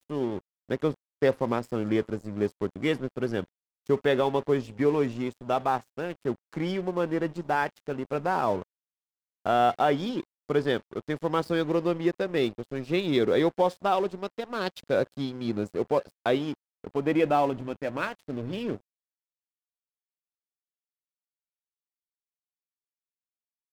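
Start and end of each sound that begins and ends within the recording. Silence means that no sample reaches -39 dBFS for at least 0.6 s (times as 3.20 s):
9.46–18.77 s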